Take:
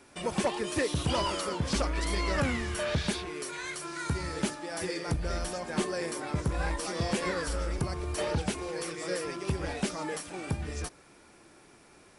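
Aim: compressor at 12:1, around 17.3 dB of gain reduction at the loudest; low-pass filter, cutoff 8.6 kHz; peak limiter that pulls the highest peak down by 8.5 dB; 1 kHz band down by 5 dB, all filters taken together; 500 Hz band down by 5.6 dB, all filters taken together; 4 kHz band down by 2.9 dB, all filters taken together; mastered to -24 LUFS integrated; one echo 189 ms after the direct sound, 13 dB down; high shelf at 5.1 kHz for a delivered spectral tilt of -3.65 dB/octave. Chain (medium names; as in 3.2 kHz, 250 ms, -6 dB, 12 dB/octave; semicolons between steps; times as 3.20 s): low-pass 8.6 kHz; peaking EQ 500 Hz -6 dB; peaking EQ 1 kHz -4.5 dB; peaking EQ 4 kHz -8 dB; treble shelf 5.1 kHz +9 dB; compression 12:1, threshold -44 dBFS; peak limiter -41 dBFS; delay 189 ms -13 dB; trim +26 dB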